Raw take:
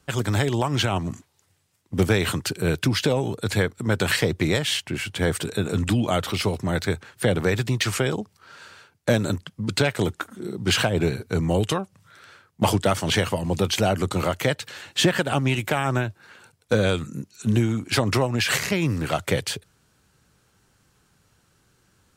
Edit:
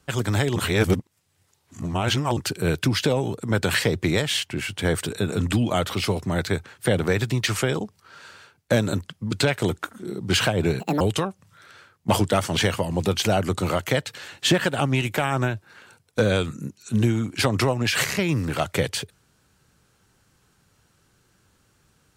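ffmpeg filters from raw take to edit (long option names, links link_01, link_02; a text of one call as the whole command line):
ffmpeg -i in.wav -filter_complex "[0:a]asplit=6[link_01][link_02][link_03][link_04][link_05][link_06];[link_01]atrim=end=0.562[link_07];[link_02]atrim=start=0.558:end=2.372,asetpts=PTS-STARTPTS,areverse[link_08];[link_03]atrim=start=2.368:end=3.402[link_09];[link_04]atrim=start=3.768:end=11.174[link_10];[link_05]atrim=start=11.17:end=11.54,asetpts=PTS-STARTPTS,asetrate=78939,aresample=44100[link_11];[link_06]atrim=start=11.536[link_12];[link_07][link_08]acrossfade=duration=0.004:curve1=hsin:curve2=hsin[link_13];[link_13][link_09]acrossfade=duration=0.004:curve1=hsin:curve2=hsin[link_14];[link_14][link_10]acrossfade=duration=0.004:curve1=hsin:curve2=hsin[link_15];[link_15][link_11]acrossfade=duration=0.004:curve1=hsin:curve2=hsin[link_16];[link_16][link_12]acrossfade=duration=0.004:curve1=hsin:curve2=hsin" out.wav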